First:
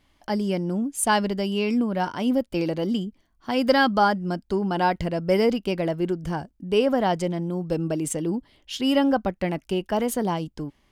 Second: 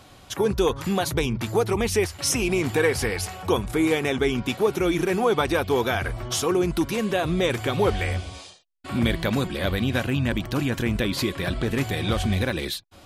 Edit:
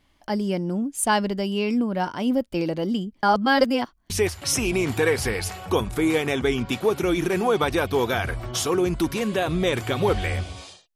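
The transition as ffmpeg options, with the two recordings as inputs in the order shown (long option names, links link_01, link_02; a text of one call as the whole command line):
ffmpeg -i cue0.wav -i cue1.wav -filter_complex "[0:a]apad=whole_dur=10.95,atrim=end=10.95,asplit=2[link_01][link_02];[link_01]atrim=end=3.232[link_03];[link_02]atrim=start=3.228:end=4.102,asetpts=PTS-STARTPTS,areverse[link_04];[1:a]atrim=start=1.868:end=8.72[link_05];[link_03][link_04]acrossfade=duration=0.004:curve1=hsin:curve2=hsin[link_06];[link_06][link_05]acrossfade=duration=0.004:curve1=hsin:curve2=hsin" out.wav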